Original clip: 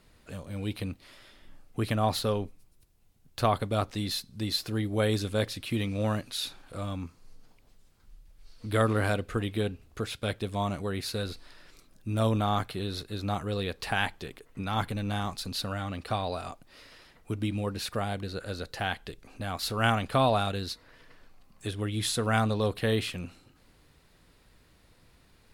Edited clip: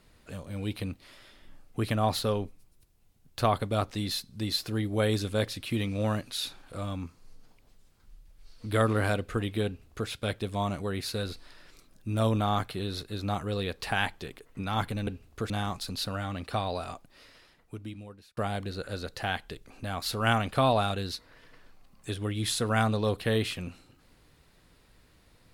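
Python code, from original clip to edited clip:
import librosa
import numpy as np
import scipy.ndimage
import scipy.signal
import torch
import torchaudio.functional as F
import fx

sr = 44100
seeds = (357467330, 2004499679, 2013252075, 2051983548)

y = fx.edit(x, sr, fx.duplicate(start_s=9.66, length_s=0.43, to_s=15.07),
    fx.fade_out_span(start_s=16.42, length_s=1.52), tone=tone)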